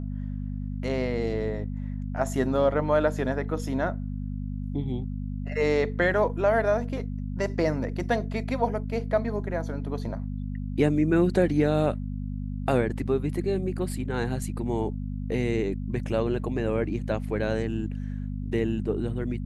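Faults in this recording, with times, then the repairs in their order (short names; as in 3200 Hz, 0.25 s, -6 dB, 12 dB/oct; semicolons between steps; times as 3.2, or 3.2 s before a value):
hum 50 Hz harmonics 5 -32 dBFS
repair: de-hum 50 Hz, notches 5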